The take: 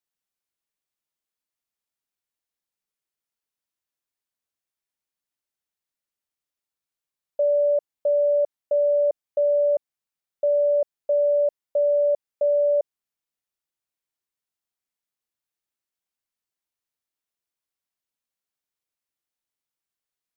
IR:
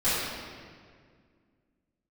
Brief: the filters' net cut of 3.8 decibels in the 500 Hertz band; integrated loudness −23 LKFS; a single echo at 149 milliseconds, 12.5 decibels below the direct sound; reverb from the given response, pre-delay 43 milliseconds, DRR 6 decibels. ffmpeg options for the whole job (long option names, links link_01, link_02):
-filter_complex "[0:a]equalizer=frequency=500:width_type=o:gain=-4.5,aecho=1:1:149:0.237,asplit=2[link_01][link_02];[1:a]atrim=start_sample=2205,adelay=43[link_03];[link_02][link_03]afir=irnorm=-1:irlink=0,volume=-20dB[link_04];[link_01][link_04]amix=inputs=2:normalize=0,volume=4dB"